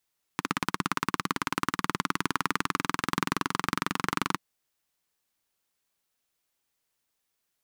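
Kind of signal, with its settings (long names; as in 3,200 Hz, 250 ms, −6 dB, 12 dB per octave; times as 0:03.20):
pulse-train model of a single-cylinder engine, changing speed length 3.99 s, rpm 2,000, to 2,800, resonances 190/270/1,100 Hz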